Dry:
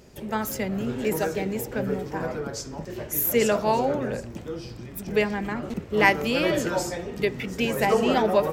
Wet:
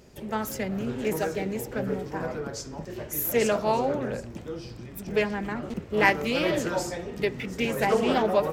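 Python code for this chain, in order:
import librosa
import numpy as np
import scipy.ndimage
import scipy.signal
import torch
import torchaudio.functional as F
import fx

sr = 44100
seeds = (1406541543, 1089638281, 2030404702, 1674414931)

y = fx.doppler_dist(x, sr, depth_ms=0.17)
y = y * 10.0 ** (-2.0 / 20.0)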